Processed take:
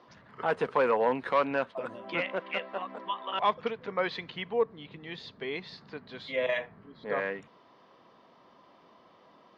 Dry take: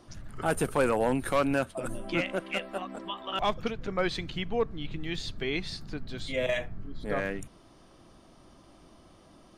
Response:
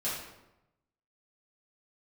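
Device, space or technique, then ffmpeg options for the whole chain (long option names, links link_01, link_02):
kitchen radio: -filter_complex "[0:a]highpass=220,equalizer=frequency=320:width_type=q:width=4:gain=-7,equalizer=frequency=470:width_type=q:width=4:gain=6,equalizer=frequency=1000:width_type=q:width=4:gain=9,equalizer=frequency=1900:width_type=q:width=4:gain=5,lowpass=frequency=4400:width=0.5412,lowpass=frequency=4400:width=1.3066,asettb=1/sr,asplit=3[link_01][link_02][link_03];[link_01]atrim=end=4.534[link_04];[link_02]atrim=start=4.53:end=5.78,asetpts=PTS-STARTPTS,afade=type=in:duration=0.004:curve=qsin,afade=type=out:start_time=1.246:duration=0.004:curve=qsin,equalizer=frequency=2100:width=0.54:gain=-4.5[link_05];[link_03]atrim=start=5.776[link_06];[link_04][link_05]acrossfade=duration=0.004:curve1=hsin:curve2=qsin[link_07];[link_07][link_06]acrossfade=duration=0.004:curve1=qsin:curve2=hsin,volume=-2.5dB"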